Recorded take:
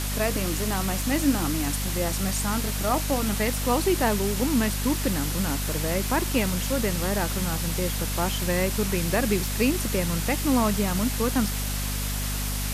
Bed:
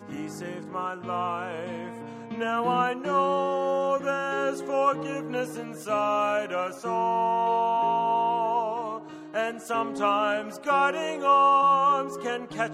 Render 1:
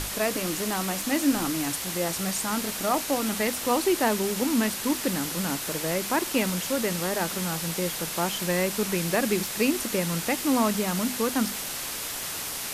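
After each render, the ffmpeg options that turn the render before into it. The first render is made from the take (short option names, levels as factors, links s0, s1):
-af "bandreject=f=50:t=h:w=6,bandreject=f=100:t=h:w=6,bandreject=f=150:t=h:w=6,bandreject=f=200:t=h:w=6,bandreject=f=250:t=h:w=6"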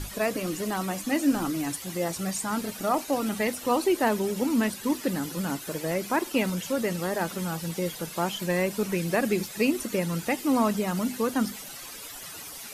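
-af "afftdn=nr=13:nf=-34"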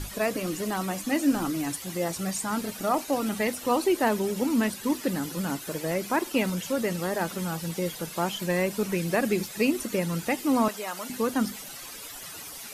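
-filter_complex "[0:a]asettb=1/sr,asplit=3[s0][s1][s2];[s0]atrim=end=10.684[s3];[s1]atrim=start=10.68:end=11.1,asetpts=PTS-STARTPTS,afade=t=in:d=0.004:c=qsin,afade=t=out:st=0.416:d=0.004:c=qsin,highpass=590[s4];[s2]atrim=start=11.096[s5];[s3][s4]acrossfade=d=0.004:c1=hsin:c2=qsin[s6];[s6][s5]acrossfade=d=0.004:c1=qsin:c2=hsin"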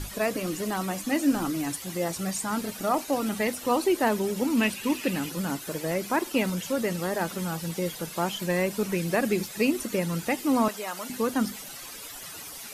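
-filter_complex "[0:a]asettb=1/sr,asplit=3[s0][s1][s2];[s0]atrim=end=4.574[s3];[s1]atrim=start=4.57:end=5.3,asetpts=PTS-STARTPTS,afade=t=in:d=0.004:c=qsin,afade=t=out:st=0.726:d=0.004:c=qsin,equalizer=f=2600:w=3.1:g=12.5[s4];[s2]atrim=start=5.296[s5];[s3][s4]acrossfade=d=0.004:c1=hsin:c2=qsin[s6];[s6][s5]acrossfade=d=0.004:c1=qsin:c2=hsin"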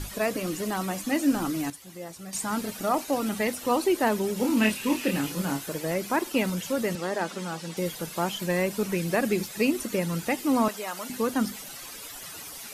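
-filter_complex "[0:a]asettb=1/sr,asplit=3[s0][s1][s2];[s0]atrim=end=4.374[s3];[s1]atrim=start=4.37:end=5.66,asetpts=PTS-STARTPTS,afade=t=in:d=0.004:c=qsin,afade=t=out:st=1.286:d=0.004:c=qsin,asplit=2[s4][s5];[s5]adelay=28,volume=0.596[s6];[s4][s6]amix=inputs=2:normalize=0,atrim=end_sample=56889[s7];[s2]atrim=start=5.656[s8];[s3][s7]acrossfade=d=0.004:c1=hsin:c2=qsin[s9];[s9][s8]acrossfade=d=0.004:c1=qsin:c2=hsin,asettb=1/sr,asplit=3[s10][s11][s12];[s10]atrim=end=6.954[s13];[s11]atrim=start=6.95:end=7.77,asetpts=PTS-STARTPTS,afade=t=in:d=0.004:c=qsin,afade=t=out:st=0.816:d=0.004:c=qsin,highpass=210,lowpass=7700[s14];[s12]atrim=start=7.766[s15];[s13][s14]acrossfade=d=0.004:c1=hsin:c2=qsin[s16];[s16][s15]acrossfade=d=0.004:c1=qsin:c2=hsin,asplit=3[s17][s18][s19];[s17]atrim=end=1.702[s20];[s18]atrim=start=1.698:end=2.332,asetpts=PTS-STARTPTS,volume=0.299[s21];[s19]atrim=start=2.328[s22];[s20][s21]acrossfade=d=0.004:c1=hsin:c2=hsin[s23];[s23][s22]acrossfade=d=0.004:c1=hsin:c2=hsin"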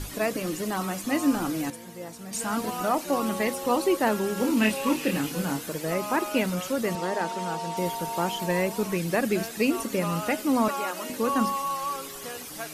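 -filter_complex "[1:a]volume=0.335[s0];[0:a][s0]amix=inputs=2:normalize=0"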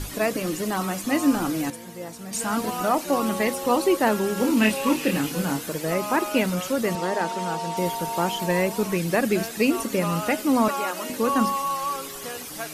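-af "volume=1.41"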